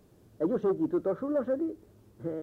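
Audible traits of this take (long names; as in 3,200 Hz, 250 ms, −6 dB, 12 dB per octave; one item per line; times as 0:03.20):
background noise floor −60 dBFS
spectral slope −3.0 dB per octave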